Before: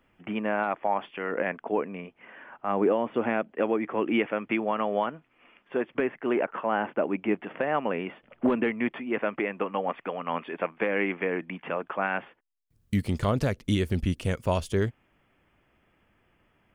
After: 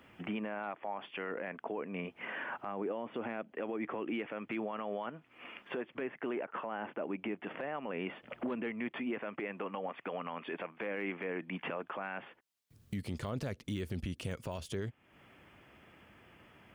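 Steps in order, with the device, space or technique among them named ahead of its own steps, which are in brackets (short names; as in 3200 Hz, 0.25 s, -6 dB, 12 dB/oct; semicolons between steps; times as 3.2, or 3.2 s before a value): broadcast voice chain (HPF 72 Hz; de-esser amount 95%; compressor 3:1, threshold -44 dBFS, peak gain reduction 18 dB; bell 3900 Hz +2.5 dB 1.4 oct; limiter -36 dBFS, peak gain reduction 10.5 dB); gain +7.5 dB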